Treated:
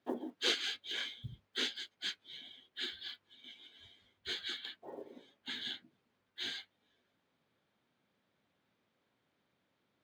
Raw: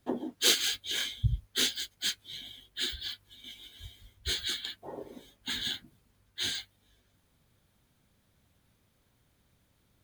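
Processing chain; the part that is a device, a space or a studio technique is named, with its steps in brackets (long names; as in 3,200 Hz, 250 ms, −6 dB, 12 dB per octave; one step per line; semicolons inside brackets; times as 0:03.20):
0:04.81–0:06.47: dynamic equaliser 1,100 Hz, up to −4 dB, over −56 dBFS, Q 1.2
early digital voice recorder (band-pass filter 240–3,500 Hz; one scale factor per block 7 bits)
level −4 dB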